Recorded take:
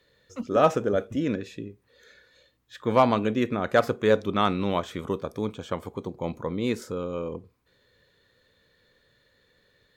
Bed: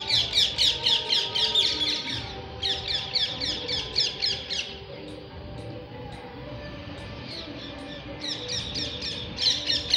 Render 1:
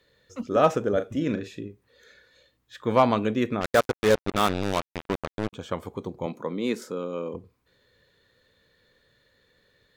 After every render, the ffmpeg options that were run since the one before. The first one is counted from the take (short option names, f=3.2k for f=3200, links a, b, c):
-filter_complex "[0:a]asettb=1/sr,asplit=3[a][b][c];[a]atrim=end=0.934[d];[b]atrim=start=0.93:end=1.67,asetpts=PTS-STARTPTS,afade=t=in:d=0.004:c=qsin,afade=t=out:st=0.736:d=0.004:c=qsin,asplit=2[e][f];[f]adelay=38,volume=-10.5dB[g];[e][g]amix=inputs=2:normalize=0,atrim=end_sample=32634[h];[c]atrim=start=1.666[i];[d][h]acrossfade=d=0.004:c1=hsin:c2=qsin[j];[j][i]acrossfade=d=0.004:c1=qsin:c2=hsin,asettb=1/sr,asplit=3[k][l][m];[k]atrim=end=3.614[n];[l]atrim=start=3.61:end=5.53,asetpts=PTS-STARTPTS,afade=t=in:d=0.004:c=qsin,afade=t=out:st=1.916:d=0.004:c=qsin,acrusher=bits=3:mix=0:aa=0.5[o];[m]atrim=start=5.526[p];[n][o]acrossfade=d=0.004:c1=hsin:c2=qsin[q];[q][p]acrossfade=d=0.004:c1=qsin:c2=hsin,asettb=1/sr,asplit=3[r][s][t];[r]atrim=end=6.264[u];[s]atrim=start=6.26:end=7.34,asetpts=PTS-STARTPTS,afade=t=in:d=0.004:c=qsin,afade=t=out:st=1.076:d=0.004:c=qsin,highpass=f=170:w=0.5412,highpass=f=170:w=1.3066[v];[t]atrim=start=7.336[w];[u][v]acrossfade=d=0.004:c1=hsin:c2=qsin[x];[x][w]acrossfade=d=0.004:c1=qsin:c2=hsin"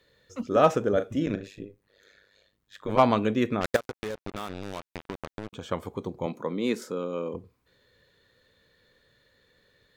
-filter_complex "[0:a]asettb=1/sr,asplit=3[a][b][c];[a]atrim=end=1.264[d];[b]atrim=start=1.26:end=2.99,asetpts=PTS-STARTPTS,afade=t=in:d=0.004:c=qsin,afade=t=out:st=1.726:d=0.004:c=qsin,tremolo=f=100:d=0.947[e];[c]atrim=start=2.986[f];[d][e]acrossfade=d=0.004:c1=hsin:c2=qsin[g];[g][f]acrossfade=d=0.004:c1=qsin:c2=hsin,asettb=1/sr,asplit=3[h][i][j];[h]atrim=end=3.764[k];[i]atrim=start=3.76:end=5.71,asetpts=PTS-STARTPTS,afade=t=in:d=0.004:c=qsin,afade=t=out:st=1.946:d=0.004:c=qsin,acompressor=threshold=-30dB:ratio=10:attack=3.2:release=140:knee=1:detection=peak[l];[j]atrim=start=5.706[m];[k][l]acrossfade=d=0.004:c1=hsin:c2=qsin[n];[n][m]acrossfade=d=0.004:c1=qsin:c2=hsin"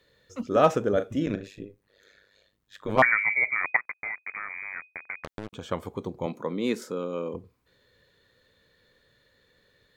-filter_complex "[0:a]asettb=1/sr,asplit=3[a][b][c];[a]atrim=end=3.024[d];[b]atrim=start=3.02:end=5.24,asetpts=PTS-STARTPTS,afade=t=in:d=0.004:c=qsin,afade=t=out:st=2.216:d=0.004:c=qsin,lowpass=f=2.1k:t=q:w=0.5098,lowpass=f=2.1k:t=q:w=0.6013,lowpass=f=2.1k:t=q:w=0.9,lowpass=f=2.1k:t=q:w=2.563,afreqshift=-2500[e];[c]atrim=start=5.236[f];[d][e]acrossfade=d=0.004:c1=hsin:c2=qsin[g];[g][f]acrossfade=d=0.004:c1=qsin:c2=hsin"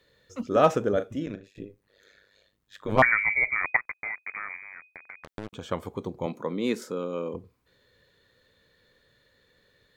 -filter_complex "[0:a]asettb=1/sr,asplit=3[a][b][c];[a]atrim=end=2.924[d];[b]atrim=start=2.92:end=3.92,asetpts=PTS-STARTPTS,afade=t=in:d=0.004:c=qsin,afade=t=out:st=0.996:d=0.004:c=qsin,lowshelf=f=100:g=11[e];[c]atrim=start=3.916[f];[d][e]acrossfade=d=0.004:c1=hsin:c2=qsin[g];[g][f]acrossfade=d=0.004:c1=qsin:c2=hsin,asettb=1/sr,asplit=3[h][i][j];[h]atrim=end=4.564[k];[i]atrim=start=4.56:end=5.28,asetpts=PTS-STARTPTS,afade=t=in:d=0.004:c=qsin,afade=t=out:st=0.716:d=0.004:c=qsin,acompressor=threshold=-45dB:ratio=2:attack=3.2:release=140:knee=1:detection=peak[l];[j]atrim=start=5.276[m];[k][l]acrossfade=d=0.004:c1=hsin:c2=qsin[n];[n][m]acrossfade=d=0.004:c1=qsin:c2=hsin,asplit=2[o][p];[o]atrim=end=1.55,asetpts=PTS-STARTPTS,afade=t=out:st=0.87:d=0.68:silence=0.16788[q];[p]atrim=start=1.55,asetpts=PTS-STARTPTS,afade=t=in:d=0.004:c=hsin:silence=0.16788[r];[q][r]concat=n=2:v=0:a=1"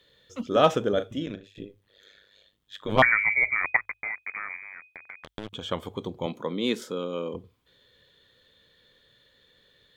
-af "equalizer=f=3.3k:t=o:w=0.37:g=12,bandreject=f=50:t=h:w=6,bandreject=f=100:t=h:w=6"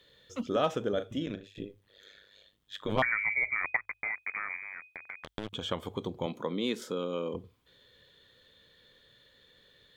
-af "acompressor=threshold=-31dB:ratio=2"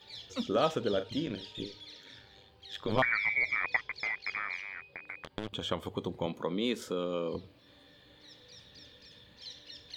-filter_complex "[1:a]volume=-24dB[a];[0:a][a]amix=inputs=2:normalize=0"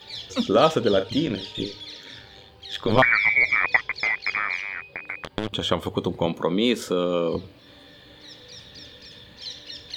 -af "volume=10.5dB"